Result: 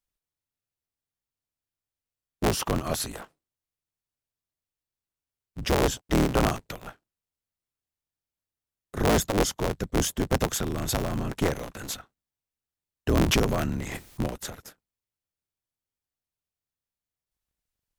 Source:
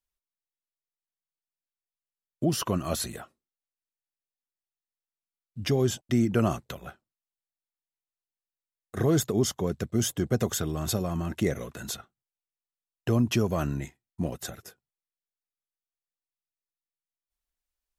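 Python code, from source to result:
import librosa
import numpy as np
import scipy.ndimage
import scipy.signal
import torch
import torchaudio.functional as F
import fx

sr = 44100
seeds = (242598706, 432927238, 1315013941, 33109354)

y = fx.cycle_switch(x, sr, every=3, mode='inverted')
y = fx.pre_swell(y, sr, db_per_s=29.0, at=(13.08, 14.27))
y = y * 10.0 ** (1.0 / 20.0)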